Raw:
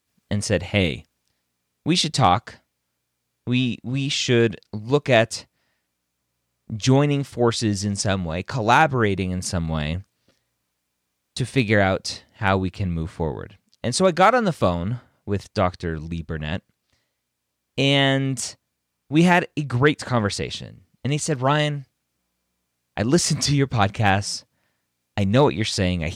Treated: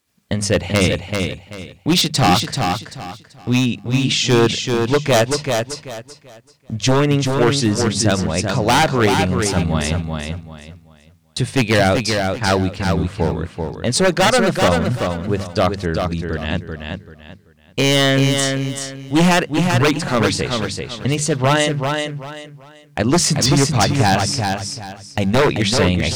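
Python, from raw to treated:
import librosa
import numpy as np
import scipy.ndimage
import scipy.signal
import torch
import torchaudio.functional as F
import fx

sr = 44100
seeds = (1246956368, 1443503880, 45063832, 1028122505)

y = fx.hum_notches(x, sr, base_hz=50, count=4)
y = 10.0 ** (-13.0 / 20.0) * (np.abs((y / 10.0 ** (-13.0 / 20.0) + 3.0) % 4.0 - 2.0) - 1.0)
y = fx.echo_feedback(y, sr, ms=386, feedback_pct=27, wet_db=-5.0)
y = y * 10.0 ** (5.5 / 20.0)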